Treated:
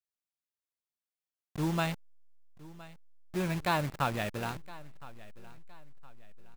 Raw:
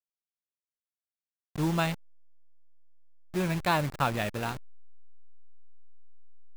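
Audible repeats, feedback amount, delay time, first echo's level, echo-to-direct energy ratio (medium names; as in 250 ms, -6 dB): 2, 36%, 1015 ms, -19.5 dB, -19.0 dB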